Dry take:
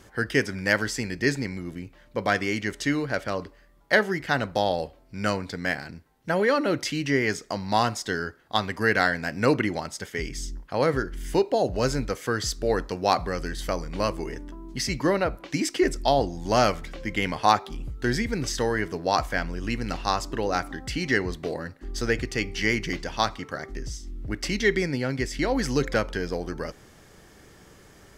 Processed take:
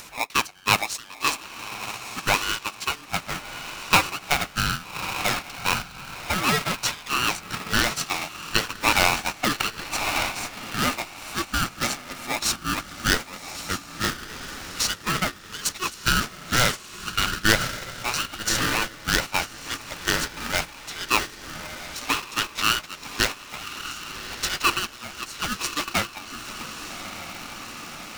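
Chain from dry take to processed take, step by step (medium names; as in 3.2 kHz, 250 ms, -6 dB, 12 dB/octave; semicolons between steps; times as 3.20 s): high-pass 580 Hz 24 dB/octave; peaking EQ 870 Hz -6.5 dB 1.4 oct; echo that smears into a reverb 1181 ms, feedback 46%, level -4 dB; gate -31 dBFS, range -12 dB; upward compressor, threshold -33 dBFS; polarity switched at an audio rate 740 Hz; trim +6 dB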